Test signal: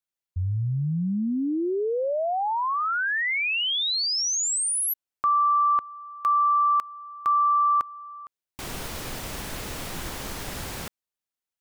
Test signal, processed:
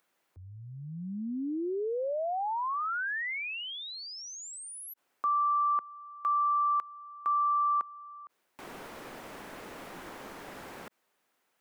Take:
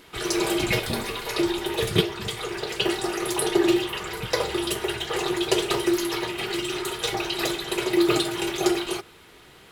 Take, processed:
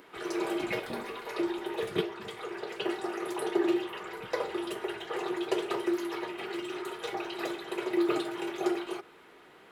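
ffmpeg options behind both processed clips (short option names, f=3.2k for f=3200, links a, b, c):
-filter_complex "[0:a]acompressor=mode=upward:threshold=-42dB:ratio=2.5:attack=4:release=22:knee=2.83:detection=peak,acrossover=split=200 2300:gain=0.126 1 0.251[a][b][c];[a][b][c]amix=inputs=3:normalize=0,volume=-6dB"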